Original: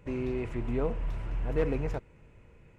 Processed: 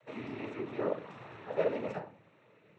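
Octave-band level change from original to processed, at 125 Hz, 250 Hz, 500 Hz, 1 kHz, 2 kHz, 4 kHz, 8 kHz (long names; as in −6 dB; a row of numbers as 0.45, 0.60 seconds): −13.5 dB, −6.5 dB, −1.5 dB, +1.0 dB, −1.0 dB, 0.0 dB, can't be measured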